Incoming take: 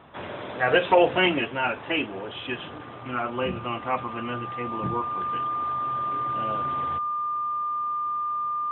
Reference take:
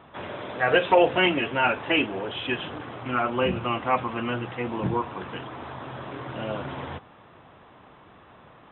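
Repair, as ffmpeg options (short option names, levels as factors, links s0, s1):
-af "bandreject=f=1200:w=30,asetnsamples=n=441:p=0,asendcmd='1.45 volume volume 3.5dB',volume=1"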